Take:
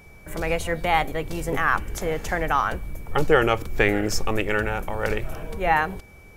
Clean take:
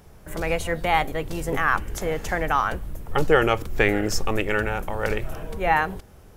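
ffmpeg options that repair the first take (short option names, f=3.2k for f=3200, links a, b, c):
-af "bandreject=f=2.3k:w=30"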